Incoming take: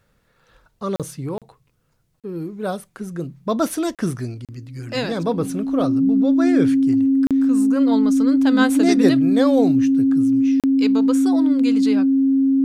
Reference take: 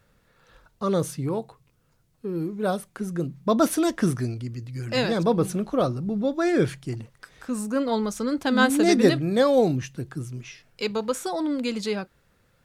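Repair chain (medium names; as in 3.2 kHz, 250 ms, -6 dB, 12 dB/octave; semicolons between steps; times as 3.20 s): band-stop 270 Hz, Q 30; interpolate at 0.96/1.38/2.20/3.95/4.45/7.27/10.60 s, 37 ms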